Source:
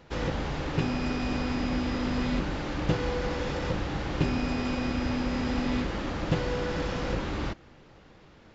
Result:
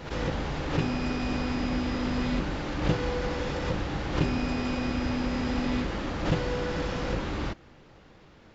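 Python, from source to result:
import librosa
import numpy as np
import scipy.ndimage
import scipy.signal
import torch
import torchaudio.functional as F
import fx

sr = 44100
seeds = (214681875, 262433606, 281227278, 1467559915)

y = fx.pre_swell(x, sr, db_per_s=100.0)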